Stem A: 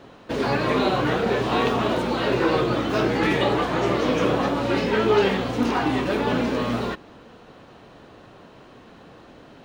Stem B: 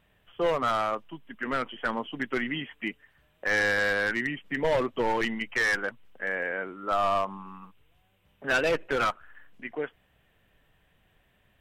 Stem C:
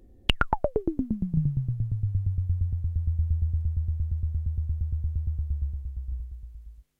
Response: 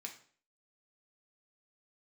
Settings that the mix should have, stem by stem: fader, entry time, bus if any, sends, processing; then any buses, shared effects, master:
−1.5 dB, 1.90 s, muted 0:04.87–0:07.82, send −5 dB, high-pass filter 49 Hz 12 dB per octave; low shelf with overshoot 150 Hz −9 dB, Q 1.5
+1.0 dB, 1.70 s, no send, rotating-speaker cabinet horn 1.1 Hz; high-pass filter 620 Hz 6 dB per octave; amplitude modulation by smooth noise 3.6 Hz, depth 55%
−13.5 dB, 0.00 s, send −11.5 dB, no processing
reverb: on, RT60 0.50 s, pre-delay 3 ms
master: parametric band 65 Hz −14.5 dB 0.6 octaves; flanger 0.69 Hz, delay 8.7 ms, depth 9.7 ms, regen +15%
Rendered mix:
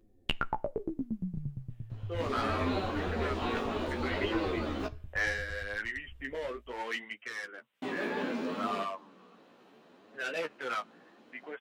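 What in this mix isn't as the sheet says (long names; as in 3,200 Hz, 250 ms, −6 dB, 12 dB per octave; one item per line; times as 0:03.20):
stem A −1.5 dB → −11.0 dB
stem C −13.5 dB → −5.0 dB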